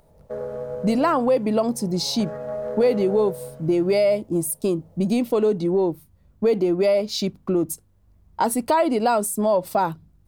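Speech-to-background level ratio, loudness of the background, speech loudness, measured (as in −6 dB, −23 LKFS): 12.0 dB, −34.0 LKFS, −22.0 LKFS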